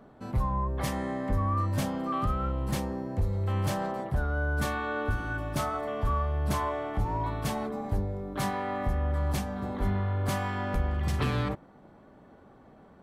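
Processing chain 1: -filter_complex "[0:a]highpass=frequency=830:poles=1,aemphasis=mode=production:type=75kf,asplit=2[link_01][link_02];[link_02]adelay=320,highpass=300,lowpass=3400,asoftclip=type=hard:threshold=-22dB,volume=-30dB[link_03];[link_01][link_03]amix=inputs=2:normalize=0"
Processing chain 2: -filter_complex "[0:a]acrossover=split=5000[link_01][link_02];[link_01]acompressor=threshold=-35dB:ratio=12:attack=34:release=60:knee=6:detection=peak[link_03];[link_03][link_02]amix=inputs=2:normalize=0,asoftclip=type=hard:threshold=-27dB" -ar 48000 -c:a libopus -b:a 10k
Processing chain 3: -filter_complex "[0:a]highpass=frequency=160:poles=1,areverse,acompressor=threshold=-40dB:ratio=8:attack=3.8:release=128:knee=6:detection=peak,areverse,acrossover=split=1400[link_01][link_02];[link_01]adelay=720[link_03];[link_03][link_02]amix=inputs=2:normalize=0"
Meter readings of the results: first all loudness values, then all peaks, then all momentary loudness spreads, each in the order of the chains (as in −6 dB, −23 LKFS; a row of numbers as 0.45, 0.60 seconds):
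−33.5, −37.5, −44.5 LKFS; −13.0, −24.0, −32.5 dBFS; 10, 5, 4 LU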